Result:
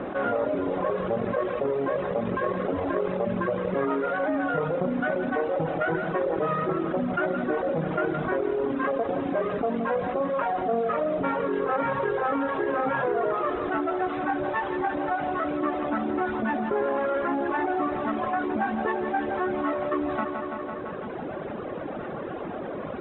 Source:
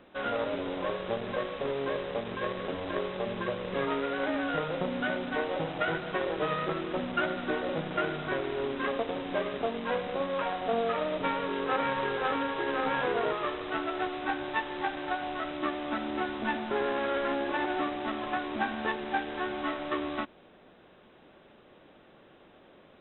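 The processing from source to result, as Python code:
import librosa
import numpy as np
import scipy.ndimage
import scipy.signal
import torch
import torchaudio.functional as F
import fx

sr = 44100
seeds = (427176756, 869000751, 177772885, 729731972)

y = fx.highpass(x, sr, hz=89.0, slope=6)
y = fx.dereverb_blind(y, sr, rt60_s=1.8)
y = scipy.signal.sosfilt(scipy.signal.butter(2, 1300.0, 'lowpass', fs=sr, output='sos'), y)
y = fx.notch(y, sr, hz=910.0, q=20.0)
y = fx.echo_feedback(y, sr, ms=168, feedback_pct=60, wet_db=-15.5)
y = fx.env_flatten(y, sr, amount_pct=70)
y = y * librosa.db_to_amplitude(3.5)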